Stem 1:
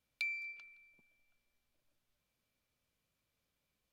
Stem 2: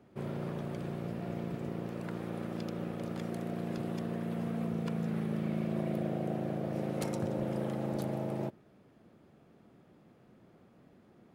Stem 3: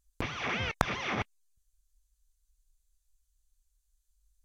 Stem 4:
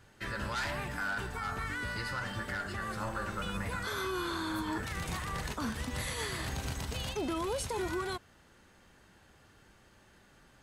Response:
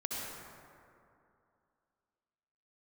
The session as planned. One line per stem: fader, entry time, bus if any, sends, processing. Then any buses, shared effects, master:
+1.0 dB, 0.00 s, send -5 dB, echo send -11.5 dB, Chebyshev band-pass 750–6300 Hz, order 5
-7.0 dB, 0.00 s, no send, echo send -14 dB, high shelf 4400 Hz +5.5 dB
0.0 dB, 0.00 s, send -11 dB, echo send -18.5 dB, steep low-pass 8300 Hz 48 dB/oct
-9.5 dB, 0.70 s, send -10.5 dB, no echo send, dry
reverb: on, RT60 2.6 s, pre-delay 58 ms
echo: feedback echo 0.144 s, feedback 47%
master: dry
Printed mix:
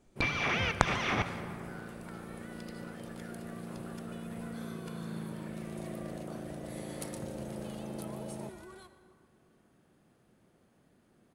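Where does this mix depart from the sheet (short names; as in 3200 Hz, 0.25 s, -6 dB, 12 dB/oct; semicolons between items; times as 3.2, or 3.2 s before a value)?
stem 4 -9.5 dB -> -18.5 dB; master: extra bell 9800 Hz +9 dB 0.41 oct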